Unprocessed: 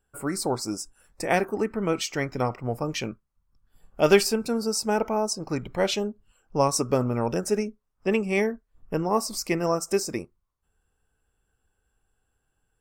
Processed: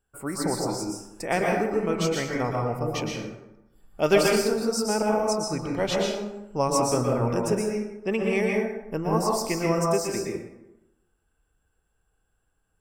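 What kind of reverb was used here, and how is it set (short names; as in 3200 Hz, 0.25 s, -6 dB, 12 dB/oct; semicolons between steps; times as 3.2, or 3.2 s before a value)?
plate-style reverb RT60 0.95 s, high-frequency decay 0.55×, pre-delay 0.105 s, DRR -1.5 dB; gain -3 dB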